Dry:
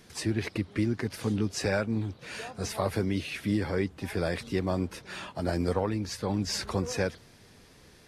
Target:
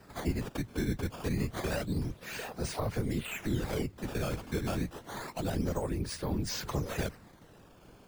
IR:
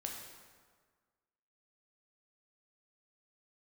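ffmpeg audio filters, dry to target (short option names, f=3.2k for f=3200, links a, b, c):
-filter_complex "[0:a]acrusher=samples=13:mix=1:aa=0.000001:lfo=1:lforange=20.8:lforate=0.28,afftfilt=real='hypot(re,im)*cos(2*PI*random(0))':imag='hypot(re,im)*sin(2*PI*random(1))':win_size=512:overlap=0.75,acrossover=split=160[a][b];[b]acompressor=threshold=-40dB:ratio=2.5[c];[a][c]amix=inputs=2:normalize=0,volume=5.5dB"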